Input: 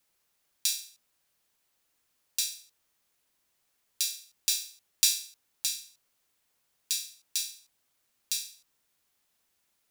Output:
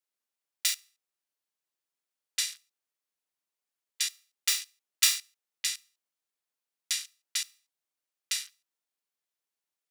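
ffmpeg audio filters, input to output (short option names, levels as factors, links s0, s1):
-filter_complex "[0:a]highpass=f=300:w=0.5412,highpass=f=300:w=1.3066,afwtdn=0.00794,asplit=2[s0][s1];[s1]asetrate=22050,aresample=44100,atempo=2,volume=0.501[s2];[s0][s2]amix=inputs=2:normalize=0"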